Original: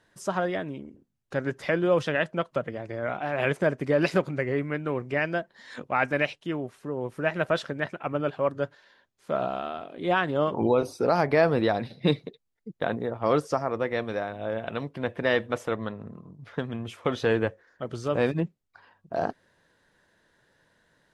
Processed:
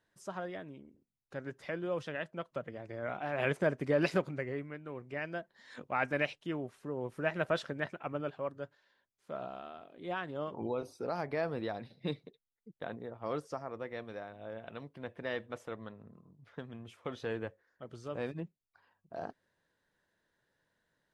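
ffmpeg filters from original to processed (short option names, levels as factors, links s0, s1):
-af "volume=1.5,afade=t=in:st=2.32:d=1.17:silence=0.446684,afade=t=out:st=4.07:d=0.73:silence=0.316228,afade=t=in:st=4.8:d=1.45:silence=0.334965,afade=t=out:st=7.82:d=0.76:silence=0.446684"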